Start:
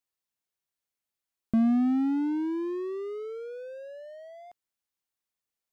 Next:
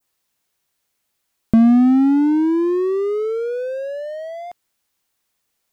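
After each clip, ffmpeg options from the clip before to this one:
-filter_complex "[0:a]adynamicequalizer=threshold=0.00158:dfrequency=3000:dqfactor=0.81:tfrequency=3000:tqfactor=0.81:attack=5:release=100:ratio=0.375:range=2.5:mode=cutabove:tftype=bell,asplit=2[a][b];[b]acompressor=threshold=-34dB:ratio=6,volume=2dB[c];[a][c]amix=inputs=2:normalize=0,volume=9dB"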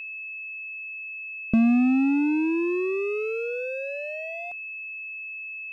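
-af "aeval=exprs='val(0)+0.0501*sin(2*PI*2600*n/s)':c=same,volume=-7.5dB"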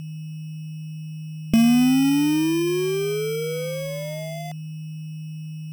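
-af "acrusher=samples=16:mix=1:aa=0.000001,volume=3dB"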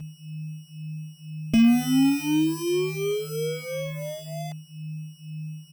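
-filter_complex "[0:a]asplit=2[a][b];[b]adelay=4.3,afreqshift=-2[c];[a][c]amix=inputs=2:normalize=1"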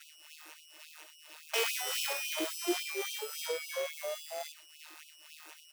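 -af "aeval=exprs='if(lt(val(0),0),0.447*val(0),val(0))':c=same,acrusher=bits=3:mode=log:mix=0:aa=0.000001,afftfilt=real='re*gte(b*sr/1024,320*pow(2500/320,0.5+0.5*sin(2*PI*3.6*pts/sr)))':imag='im*gte(b*sr/1024,320*pow(2500/320,0.5+0.5*sin(2*PI*3.6*pts/sr)))':win_size=1024:overlap=0.75"

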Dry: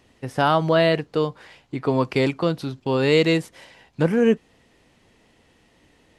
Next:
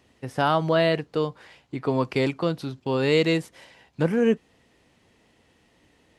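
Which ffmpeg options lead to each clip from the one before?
-af "highpass=40,volume=-3dB"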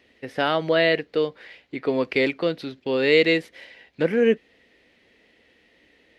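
-af "equalizer=f=125:t=o:w=1:g=-8,equalizer=f=250:t=o:w=1:g=3,equalizer=f=500:t=o:w=1:g=7,equalizer=f=1k:t=o:w=1:g=-6,equalizer=f=2k:t=o:w=1:g=11,equalizer=f=4k:t=o:w=1:g=6,equalizer=f=8k:t=o:w=1:g=-7,volume=-3dB"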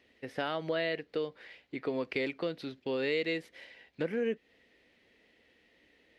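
-af "acompressor=threshold=-24dB:ratio=2.5,volume=-7dB"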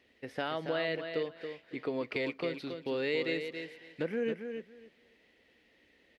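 -af "aecho=1:1:277|554|831:0.422|0.0759|0.0137,volume=-1dB"

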